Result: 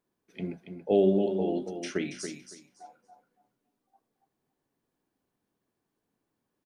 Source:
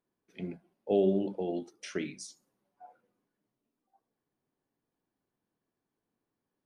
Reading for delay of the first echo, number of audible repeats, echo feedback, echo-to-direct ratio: 280 ms, 2, 19%, −8.0 dB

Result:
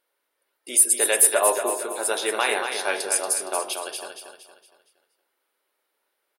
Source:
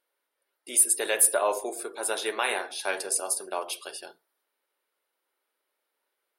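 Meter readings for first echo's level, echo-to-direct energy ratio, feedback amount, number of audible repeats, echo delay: −7.0 dB, −6.0 dB, 41%, 4, 232 ms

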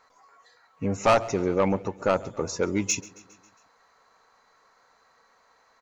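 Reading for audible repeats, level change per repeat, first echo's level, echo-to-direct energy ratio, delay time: 3, −4.5 dB, −21.5 dB, −19.5 dB, 136 ms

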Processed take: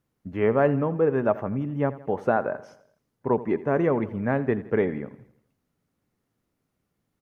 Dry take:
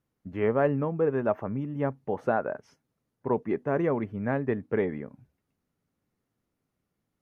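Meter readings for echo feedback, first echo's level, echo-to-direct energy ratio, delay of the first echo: 52%, −17.0 dB, −15.5 dB, 83 ms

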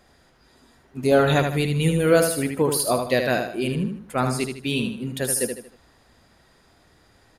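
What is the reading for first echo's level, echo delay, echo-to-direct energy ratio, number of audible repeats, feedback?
−6.0 dB, 77 ms, −5.5 dB, 4, 37%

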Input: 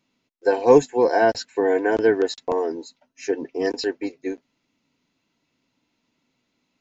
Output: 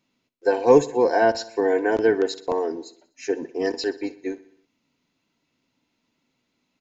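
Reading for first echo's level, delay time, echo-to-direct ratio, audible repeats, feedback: −18.0 dB, 62 ms, −16.5 dB, 4, 57%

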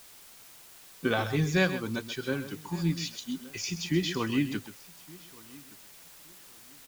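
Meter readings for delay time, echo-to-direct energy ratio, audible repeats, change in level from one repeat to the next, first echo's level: 130 ms, −11.5 dB, 2, repeats not evenly spaced, −12.0 dB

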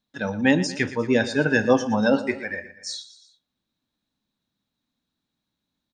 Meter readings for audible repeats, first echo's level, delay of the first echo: 3, −15.0 dB, 118 ms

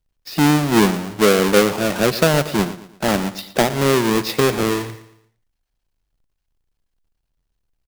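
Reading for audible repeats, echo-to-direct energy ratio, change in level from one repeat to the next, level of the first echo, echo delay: 3, −14.5 dB, −8.0 dB, −15.0 dB, 115 ms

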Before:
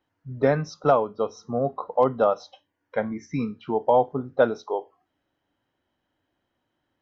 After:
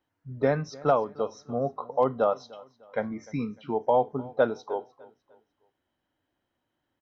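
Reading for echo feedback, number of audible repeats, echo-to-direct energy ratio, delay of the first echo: 36%, 2, −21.0 dB, 301 ms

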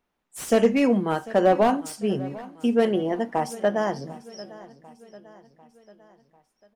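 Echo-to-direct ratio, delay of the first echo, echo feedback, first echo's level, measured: −17.5 dB, 746 ms, 52%, −19.0 dB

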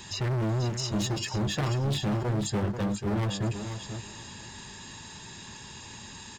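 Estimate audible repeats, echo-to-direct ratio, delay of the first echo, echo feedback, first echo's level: 2, −8.5 dB, 488 ms, 20%, −8.5 dB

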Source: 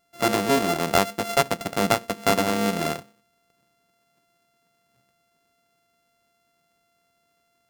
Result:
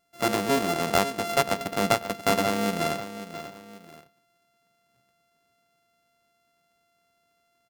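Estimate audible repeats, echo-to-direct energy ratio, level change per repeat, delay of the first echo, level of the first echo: 2, −11.5 dB, −8.0 dB, 537 ms, −12.0 dB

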